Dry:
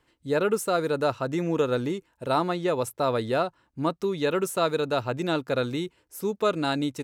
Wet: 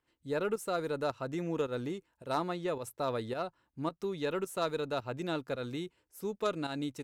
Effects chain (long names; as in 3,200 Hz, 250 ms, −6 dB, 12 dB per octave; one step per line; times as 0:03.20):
harmonic generator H 2 −21 dB, 3 −16 dB, 4 −27 dB, 5 −26 dB, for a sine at −11 dBFS
fake sidechain pumping 108 BPM, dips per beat 1, −10 dB, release 165 ms
level −6 dB